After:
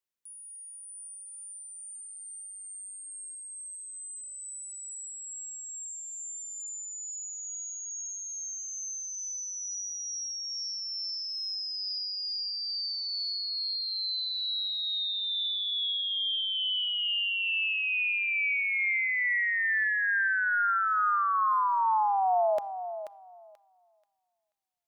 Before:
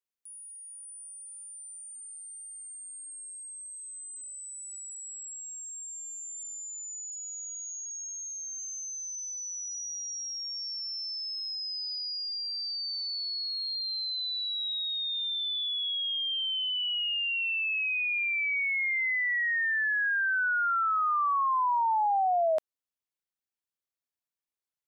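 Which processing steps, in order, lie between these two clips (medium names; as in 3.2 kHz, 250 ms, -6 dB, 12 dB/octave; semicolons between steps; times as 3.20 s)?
thinning echo 484 ms, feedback 25%, high-pass 720 Hz, level -8 dB; on a send at -18 dB: reverberation RT60 0.90 s, pre-delay 6 ms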